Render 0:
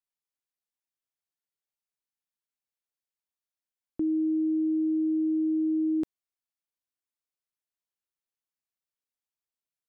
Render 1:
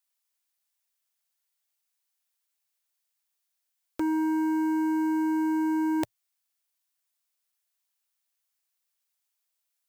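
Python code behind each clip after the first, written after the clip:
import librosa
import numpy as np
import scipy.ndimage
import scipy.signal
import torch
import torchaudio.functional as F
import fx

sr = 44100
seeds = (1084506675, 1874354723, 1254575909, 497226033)

y = fx.curve_eq(x, sr, hz=(110.0, 160.0, 420.0, 600.0), db=(0, -18, -6, 5))
y = fx.leveller(y, sr, passes=3)
y = fx.tilt_eq(y, sr, slope=2.0)
y = y * 10.0 ** (7.0 / 20.0)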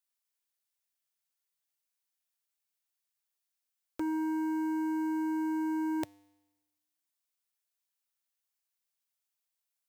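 y = fx.comb_fb(x, sr, f0_hz=100.0, decay_s=1.1, harmonics='odd', damping=0.0, mix_pct=50)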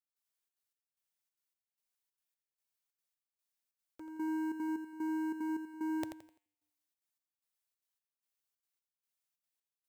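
y = fx.step_gate(x, sr, bpm=186, pattern='..xxxx.xx.', floor_db=-12.0, edge_ms=4.5)
y = fx.echo_feedback(y, sr, ms=85, feedback_pct=33, wet_db=-8.5)
y = y * 10.0 ** (-3.5 / 20.0)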